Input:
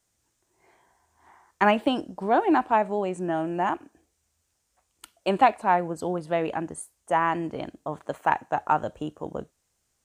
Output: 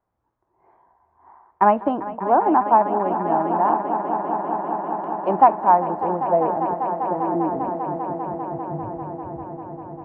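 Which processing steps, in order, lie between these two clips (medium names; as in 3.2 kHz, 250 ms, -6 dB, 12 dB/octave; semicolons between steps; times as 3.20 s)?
low-pass sweep 990 Hz -> 110 Hz, 5.80–9.25 s; echo with a slow build-up 198 ms, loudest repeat 5, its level -13 dB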